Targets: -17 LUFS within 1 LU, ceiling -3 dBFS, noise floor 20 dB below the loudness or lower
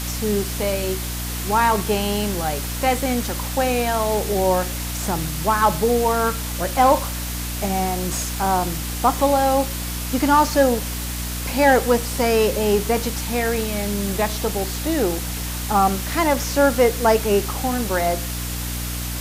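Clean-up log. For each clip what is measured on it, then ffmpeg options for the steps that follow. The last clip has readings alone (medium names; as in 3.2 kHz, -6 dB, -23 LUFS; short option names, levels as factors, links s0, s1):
hum 60 Hz; highest harmonic 300 Hz; hum level -26 dBFS; noise floor -27 dBFS; noise floor target -41 dBFS; loudness -20.5 LUFS; peak level -4.0 dBFS; loudness target -17.0 LUFS
-> -af "bandreject=f=60:t=h:w=6,bandreject=f=120:t=h:w=6,bandreject=f=180:t=h:w=6,bandreject=f=240:t=h:w=6,bandreject=f=300:t=h:w=6"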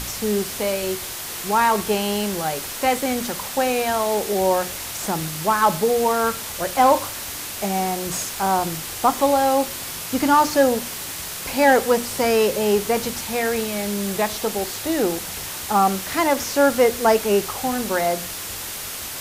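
hum not found; noise floor -32 dBFS; noise floor target -41 dBFS
-> -af "afftdn=nr=9:nf=-32"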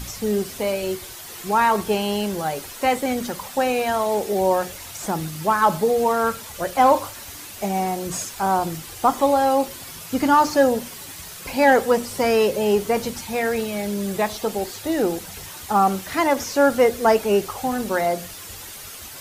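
noise floor -38 dBFS; noise floor target -42 dBFS
-> -af "afftdn=nr=6:nf=-38"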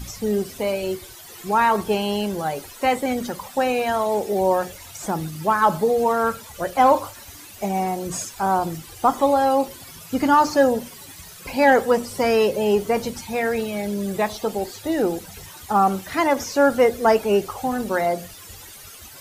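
noise floor -42 dBFS; loudness -21.5 LUFS; peak level -5.5 dBFS; loudness target -17.0 LUFS
-> -af "volume=1.68,alimiter=limit=0.708:level=0:latency=1"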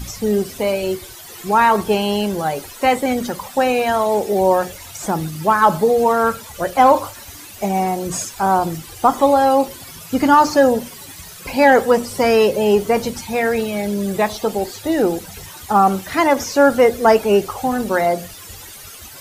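loudness -17.0 LUFS; peak level -3.0 dBFS; noise floor -38 dBFS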